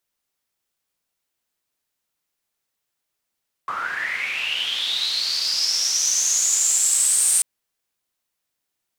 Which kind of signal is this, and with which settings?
swept filtered noise pink, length 3.74 s bandpass, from 1.1 kHz, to 8.8 kHz, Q 10, linear, gain ramp +11.5 dB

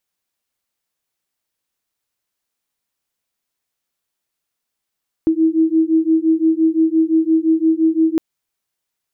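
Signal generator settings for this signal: beating tones 319 Hz, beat 5.8 Hz, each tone -15 dBFS 2.91 s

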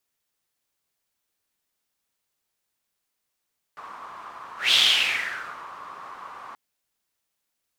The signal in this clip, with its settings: whoosh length 2.78 s, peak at 0.96 s, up 0.18 s, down 1.01 s, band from 1.1 kHz, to 3.4 kHz, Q 5.4, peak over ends 23 dB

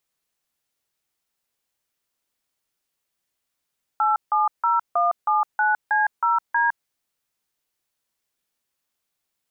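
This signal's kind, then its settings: DTMF "870179C0D", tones 160 ms, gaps 158 ms, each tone -19.5 dBFS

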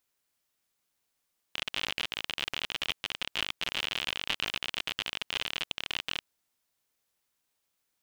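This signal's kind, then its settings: random clicks 54 per s -15 dBFS 4.72 s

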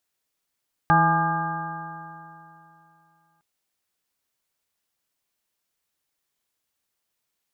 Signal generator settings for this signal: stretched partials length 2.51 s, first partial 162 Hz, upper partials -9/-19.5/-11.5/3.5/-15/1/-19/-2.5 dB, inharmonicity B 0.0026, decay 2.87 s, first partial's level -20 dB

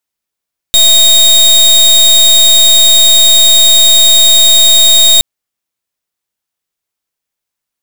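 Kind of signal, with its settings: pulse 3.73 kHz, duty 29% -5 dBFS 4.47 s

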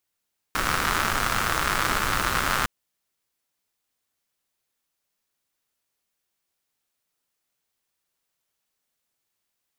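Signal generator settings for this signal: rain from filtered ticks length 2.11 s, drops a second 150, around 1.3 kHz, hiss -3 dB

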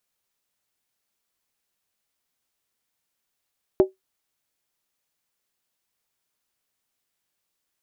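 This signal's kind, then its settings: skin hit, lowest mode 379 Hz, decay 0.15 s, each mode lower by 10 dB, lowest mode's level -8 dB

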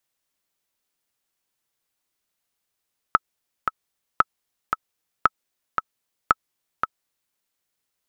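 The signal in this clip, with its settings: metronome 114 bpm, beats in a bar 2, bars 4, 1.3 kHz, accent 6.5 dB -1.5 dBFS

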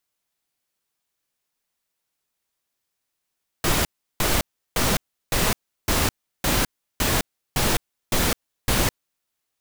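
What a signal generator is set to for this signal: noise bursts pink, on 0.21 s, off 0.35 s, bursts 10, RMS -20.5 dBFS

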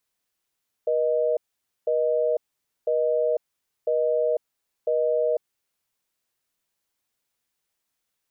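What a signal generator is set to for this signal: call progress tone busy tone, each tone -22.5 dBFS 4.54 s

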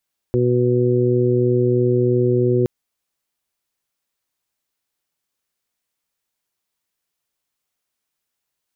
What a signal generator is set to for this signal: steady additive tone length 2.32 s, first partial 123 Hz, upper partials -5/2/-5.5 dB, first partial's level -18.5 dB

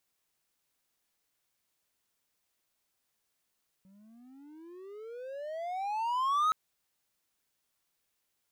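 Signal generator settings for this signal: gliding synth tone triangle, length 2.67 s, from 187 Hz, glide +33.5 st, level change +33 dB, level -21.5 dB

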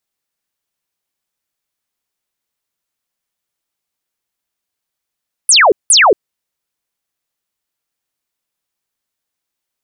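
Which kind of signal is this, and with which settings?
burst of laser zaps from 11 kHz, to 350 Hz, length 0.23 s sine, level -4.5 dB, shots 2, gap 0.18 s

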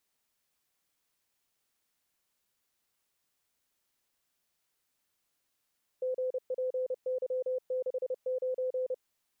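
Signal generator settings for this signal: Morse "GPY69" 30 wpm 511 Hz -29 dBFS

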